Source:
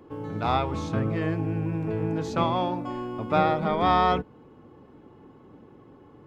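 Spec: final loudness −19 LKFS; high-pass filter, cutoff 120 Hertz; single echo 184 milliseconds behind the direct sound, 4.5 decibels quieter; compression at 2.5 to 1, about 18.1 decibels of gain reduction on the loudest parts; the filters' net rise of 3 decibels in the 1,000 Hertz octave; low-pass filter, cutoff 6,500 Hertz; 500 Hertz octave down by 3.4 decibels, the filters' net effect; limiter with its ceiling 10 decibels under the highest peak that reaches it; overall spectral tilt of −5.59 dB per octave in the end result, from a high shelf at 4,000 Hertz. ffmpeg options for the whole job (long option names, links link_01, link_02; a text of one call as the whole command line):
ffmpeg -i in.wav -af "highpass=120,lowpass=6500,equalizer=frequency=500:width_type=o:gain=-7,equalizer=frequency=1000:width_type=o:gain=6,highshelf=frequency=4000:gain=7.5,acompressor=threshold=-44dB:ratio=2.5,alimiter=level_in=10dB:limit=-24dB:level=0:latency=1,volume=-10dB,aecho=1:1:184:0.596,volume=24dB" out.wav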